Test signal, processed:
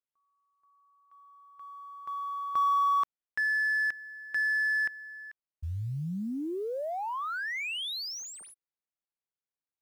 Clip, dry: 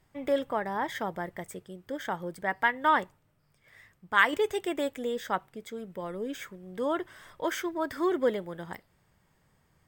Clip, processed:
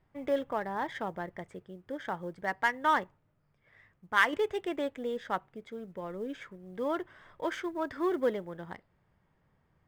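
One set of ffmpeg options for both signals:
ffmpeg -i in.wav -af "adynamicsmooth=sensitivity=4.5:basefreq=2900,acrusher=bits=9:mode=log:mix=0:aa=0.000001,volume=-2.5dB" out.wav

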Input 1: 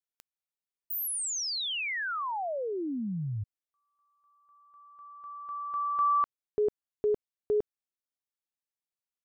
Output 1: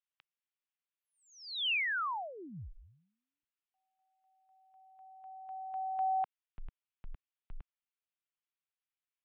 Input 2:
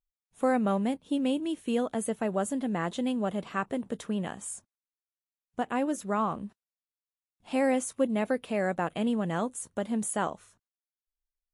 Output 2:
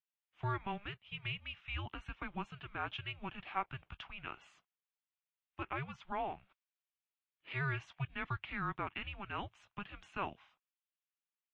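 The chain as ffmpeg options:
ffmpeg -i in.wav -af "highpass=frequency=580:width_type=q:width=0.5412,highpass=frequency=580:width_type=q:width=1.307,lowpass=frequency=3200:width_type=q:width=0.5176,lowpass=frequency=3200:width_type=q:width=0.7071,lowpass=frequency=3200:width_type=q:width=1.932,afreqshift=-400,crystalizer=i=8.5:c=0,equalizer=frequency=250:width_type=o:width=1:gain=-9,equalizer=frequency=500:width_type=o:width=1:gain=-11,equalizer=frequency=2000:width_type=o:width=1:gain=-5,volume=-3.5dB" out.wav

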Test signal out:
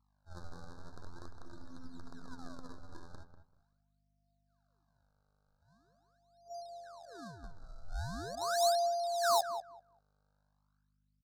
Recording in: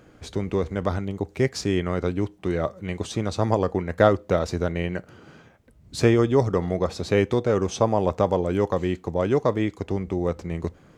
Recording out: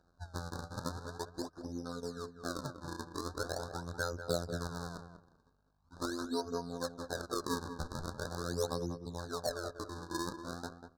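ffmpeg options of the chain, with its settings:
ffmpeg -i in.wav -filter_complex "[0:a]afwtdn=0.0316,highshelf=frequency=5700:gain=-5.5,afftfilt=real='hypot(re,im)*cos(PI*b)':imag='0':win_size=2048:overlap=0.75,acompressor=threshold=-36dB:ratio=2.5,aphaser=in_gain=1:out_gain=1:delay=4.5:decay=0.59:speed=0.23:type=triangular,aeval=exprs='val(0)+0.000398*(sin(2*PI*50*n/s)+sin(2*PI*2*50*n/s)/2+sin(2*PI*3*50*n/s)/3+sin(2*PI*4*50*n/s)/4+sin(2*PI*5*50*n/s)/5)':channel_layout=same,acrusher=samples=37:mix=1:aa=0.000001:lfo=1:lforange=59.2:lforate=0.42,adynamicsmooth=sensitivity=4.5:basefreq=3800,tiltshelf=frequency=890:gain=-7,asoftclip=type=hard:threshold=-19.5dB,asuperstop=centerf=2500:order=20:qfactor=1.2,asplit=2[link_01][link_02];[link_02]adelay=193,lowpass=frequency=1600:poles=1,volume=-8.5dB,asplit=2[link_03][link_04];[link_04]adelay=193,lowpass=frequency=1600:poles=1,volume=0.19,asplit=2[link_05][link_06];[link_06]adelay=193,lowpass=frequency=1600:poles=1,volume=0.19[link_07];[link_03][link_05][link_07]amix=inputs=3:normalize=0[link_08];[link_01][link_08]amix=inputs=2:normalize=0" out.wav

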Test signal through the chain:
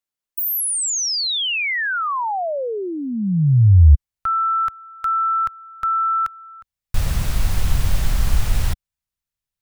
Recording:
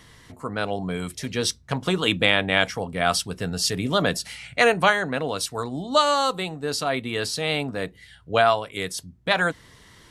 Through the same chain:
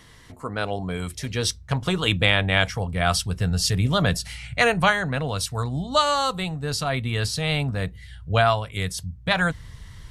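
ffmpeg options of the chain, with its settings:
ffmpeg -i in.wav -af "asubboost=boost=10.5:cutoff=99" out.wav

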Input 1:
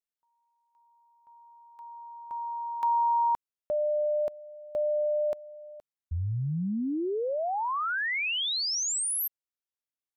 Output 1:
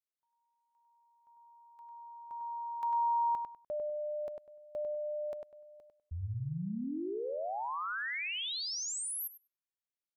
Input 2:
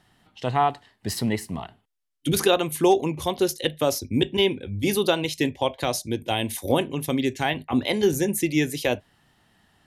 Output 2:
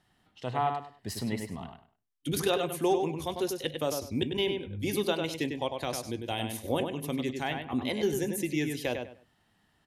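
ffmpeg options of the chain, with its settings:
ffmpeg -i in.wav -filter_complex "[0:a]asplit=2[link_01][link_02];[link_02]adelay=99,lowpass=frequency=3300:poles=1,volume=-5dB,asplit=2[link_03][link_04];[link_04]adelay=99,lowpass=frequency=3300:poles=1,volume=0.24,asplit=2[link_05][link_06];[link_06]adelay=99,lowpass=frequency=3300:poles=1,volume=0.24[link_07];[link_01][link_03][link_05][link_07]amix=inputs=4:normalize=0,volume=-8.5dB" out.wav

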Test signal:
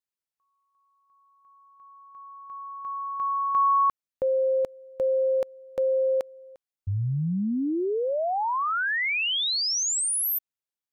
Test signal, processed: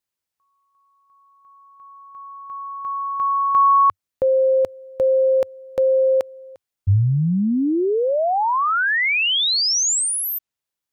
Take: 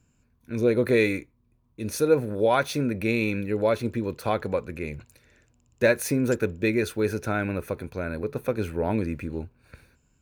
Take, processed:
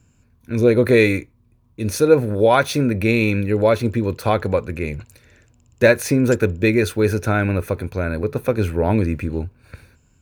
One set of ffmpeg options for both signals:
ffmpeg -i in.wav -filter_complex "[0:a]equalizer=frequency=94:width=2.7:gain=6,acrossover=split=7400[link_01][link_02];[link_02]alimiter=level_in=5.5dB:limit=-24dB:level=0:latency=1:release=325,volume=-5.5dB[link_03];[link_01][link_03]amix=inputs=2:normalize=0,volume=7dB" out.wav

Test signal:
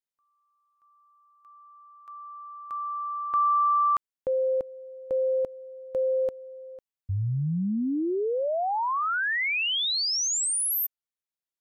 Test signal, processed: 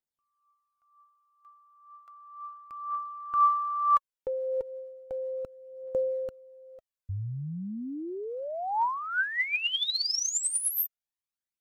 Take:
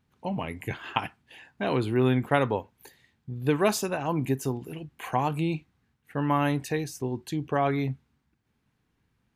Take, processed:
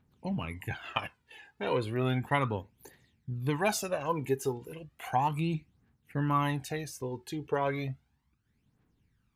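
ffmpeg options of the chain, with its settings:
ffmpeg -i in.wav -af "aphaser=in_gain=1:out_gain=1:delay=2.5:decay=0.62:speed=0.34:type=triangular,volume=-5dB" out.wav

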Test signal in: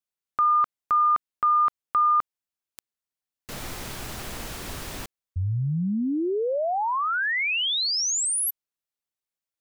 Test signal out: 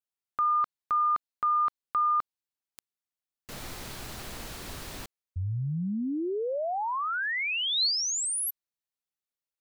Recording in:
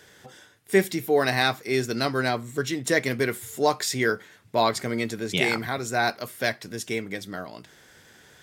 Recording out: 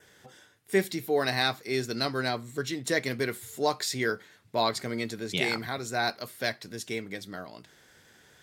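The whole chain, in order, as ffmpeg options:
ffmpeg -i in.wav -af "adynamicequalizer=threshold=0.00398:dfrequency=4200:dqfactor=4:tfrequency=4200:tqfactor=4:attack=5:release=100:ratio=0.375:range=3:mode=boostabove:tftype=bell,volume=-5dB" out.wav

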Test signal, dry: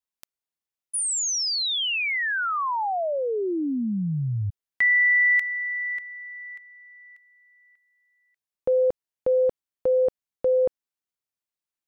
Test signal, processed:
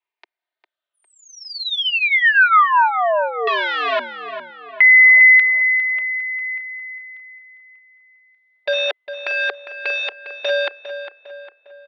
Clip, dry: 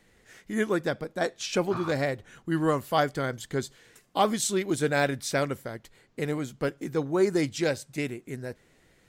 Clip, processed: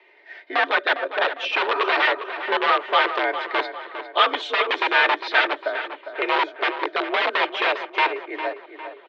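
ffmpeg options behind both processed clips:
ffmpeg -i in.wav -filter_complex "[0:a]afftfilt=real='re*pow(10,8/40*sin(2*PI*(0.72*log(max(b,1)*sr/1024/100)/log(2)-(-0.63)*(pts-256)/sr)))':imag='im*pow(10,8/40*sin(2*PI*(0.72*log(max(b,1)*sr/1024/100)/log(2)-(-0.63)*(pts-256)/sr)))':win_size=1024:overlap=0.75,aecho=1:1:3.4:0.68,acrossover=split=880|1800[link_01][link_02][link_03];[link_01]aeval=exprs='(mod(13.3*val(0)+1,2)-1)/13.3':channel_layout=same[link_04];[link_04][link_02][link_03]amix=inputs=3:normalize=0,asplit=2[link_05][link_06];[link_06]adelay=404,lowpass=frequency=2900:poles=1,volume=-10dB,asplit=2[link_07][link_08];[link_08]adelay=404,lowpass=frequency=2900:poles=1,volume=0.5,asplit=2[link_09][link_10];[link_10]adelay=404,lowpass=frequency=2900:poles=1,volume=0.5,asplit=2[link_11][link_12];[link_12]adelay=404,lowpass=frequency=2900:poles=1,volume=0.5,asplit=2[link_13][link_14];[link_14]adelay=404,lowpass=frequency=2900:poles=1,volume=0.5[link_15];[link_05][link_07][link_09][link_11][link_13][link_15]amix=inputs=6:normalize=0,highpass=frequency=360:width_type=q:width=0.5412,highpass=frequency=360:width_type=q:width=1.307,lowpass=frequency=3600:width_type=q:width=0.5176,lowpass=frequency=3600:width_type=q:width=0.7071,lowpass=frequency=3600:width_type=q:width=1.932,afreqshift=59,volume=8dB" out.wav

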